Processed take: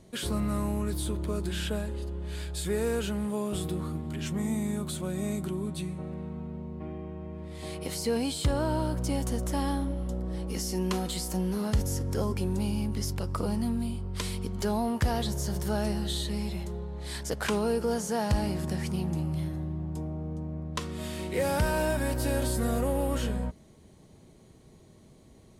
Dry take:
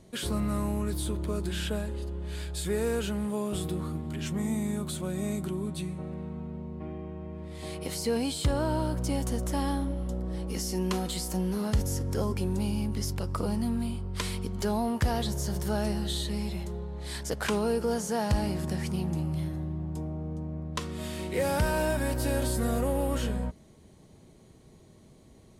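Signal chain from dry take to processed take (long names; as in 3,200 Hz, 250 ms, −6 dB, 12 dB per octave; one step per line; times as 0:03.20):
0:13.71–0:14.41: dynamic equaliser 1,500 Hz, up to −4 dB, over −48 dBFS, Q 0.73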